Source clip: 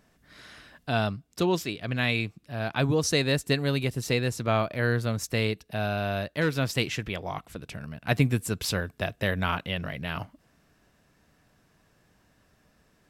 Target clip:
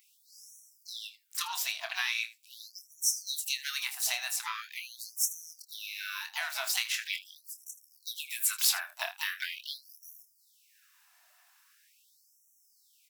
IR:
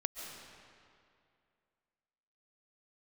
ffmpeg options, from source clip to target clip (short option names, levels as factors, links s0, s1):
-filter_complex "[0:a]highpass=f=460:w=0.5412,highpass=f=460:w=1.3066,highshelf=f=4600:g=-8,asplit=2[s0][s1];[s1]asetrate=66075,aresample=44100,atempo=0.66742,volume=0.282[s2];[s0][s2]amix=inputs=2:normalize=0,acompressor=threshold=0.0282:ratio=6,aemphasis=mode=production:type=riaa,asplit=2[s3][s4];[s4]aecho=0:1:26|79:0.376|0.15[s5];[s3][s5]amix=inputs=2:normalize=0,afftfilt=real='re*gte(b*sr/1024,600*pow(5600/600,0.5+0.5*sin(2*PI*0.42*pts/sr)))':imag='im*gte(b*sr/1024,600*pow(5600/600,0.5+0.5*sin(2*PI*0.42*pts/sr)))':win_size=1024:overlap=0.75"